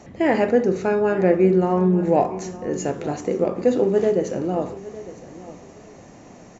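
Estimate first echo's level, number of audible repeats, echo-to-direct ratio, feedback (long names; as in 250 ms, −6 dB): −17.0 dB, 2, −17.0 dB, 23%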